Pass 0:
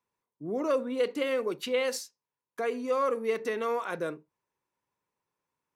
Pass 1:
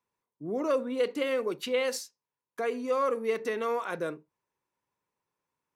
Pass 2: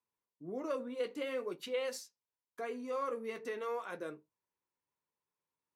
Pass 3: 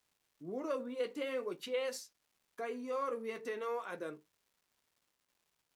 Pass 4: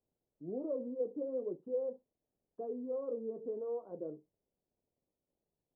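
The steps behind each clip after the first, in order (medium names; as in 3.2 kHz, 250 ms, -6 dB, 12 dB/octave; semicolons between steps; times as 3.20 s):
no audible change
flange 0.49 Hz, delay 8.7 ms, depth 4.9 ms, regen -42%; trim -5 dB
crackle 590 per s -65 dBFS
inverse Chebyshev low-pass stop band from 2.1 kHz, stop band 60 dB; trim +1.5 dB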